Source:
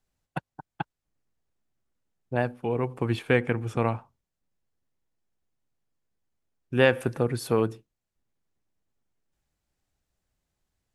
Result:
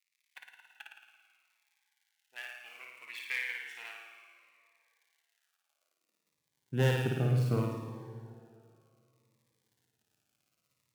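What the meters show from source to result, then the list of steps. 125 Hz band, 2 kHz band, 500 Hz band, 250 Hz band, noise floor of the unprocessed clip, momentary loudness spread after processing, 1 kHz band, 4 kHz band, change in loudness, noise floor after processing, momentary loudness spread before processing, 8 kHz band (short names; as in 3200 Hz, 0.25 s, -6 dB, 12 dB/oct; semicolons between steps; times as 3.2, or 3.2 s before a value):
-1.5 dB, -7.0 dB, -12.5 dB, -9.0 dB, under -85 dBFS, 23 LU, -12.5 dB, -5.5 dB, -7.0 dB, -83 dBFS, 17 LU, -6.0 dB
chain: switching dead time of 0.055 ms; notches 60/120/180 Hz; crackle 86/s -49 dBFS; flutter echo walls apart 9.5 m, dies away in 1 s; tube stage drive 15 dB, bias 0.6; high-pass sweep 2200 Hz -> 120 Hz, 5.31–6.41; plate-style reverb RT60 2.6 s, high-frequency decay 0.8×, DRR 8 dB; cascading phaser falling 0.65 Hz; gain -7 dB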